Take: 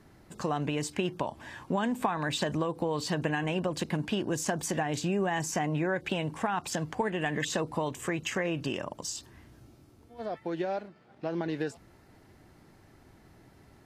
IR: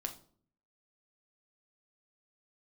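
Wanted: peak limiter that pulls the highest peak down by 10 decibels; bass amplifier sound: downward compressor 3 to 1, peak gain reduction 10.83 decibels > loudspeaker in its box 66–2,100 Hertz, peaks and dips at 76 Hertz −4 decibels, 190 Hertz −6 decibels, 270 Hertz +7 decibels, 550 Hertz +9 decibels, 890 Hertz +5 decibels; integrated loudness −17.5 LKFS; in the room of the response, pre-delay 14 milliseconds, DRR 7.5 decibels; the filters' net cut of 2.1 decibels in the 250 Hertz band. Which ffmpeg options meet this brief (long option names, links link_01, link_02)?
-filter_complex "[0:a]equalizer=frequency=250:width_type=o:gain=-5.5,alimiter=level_in=2dB:limit=-24dB:level=0:latency=1,volume=-2dB,asplit=2[link_01][link_02];[1:a]atrim=start_sample=2205,adelay=14[link_03];[link_02][link_03]afir=irnorm=-1:irlink=0,volume=-7dB[link_04];[link_01][link_04]amix=inputs=2:normalize=0,acompressor=threshold=-43dB:ratio=3,highpass=frequency=66:width=0.5412,highpass=frequency=66:width=1.3066,equalizer=frequency=76:width_type=q:width=4:gain=-4,equalizer=frequency=190:width_type=q:width=4:gain=-6,equalizer=frequency=270:width_type=q:width=4:gain=7,equalizer=frequency=550:width_type=q:width=4:gain=9,equalizer=frequency=890:width_type=q:width=4:gain=5,lowpass=frequency=2100:width=0.5412,lowpass=frequency=2100:width=1.3066,volume=24.5dB"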